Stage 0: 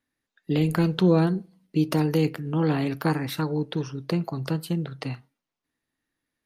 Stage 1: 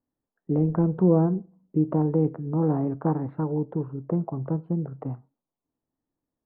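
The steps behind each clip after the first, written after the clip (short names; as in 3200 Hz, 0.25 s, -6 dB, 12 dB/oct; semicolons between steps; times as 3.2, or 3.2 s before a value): LPF 1000 Hz 24 dB/oct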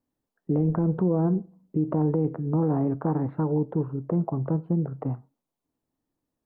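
limiter -19 dBFS, peak gain reduction 9 dB; gain +3 dB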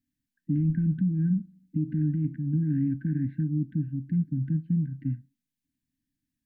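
brick-wall FIR band-stop 310–1500 Hz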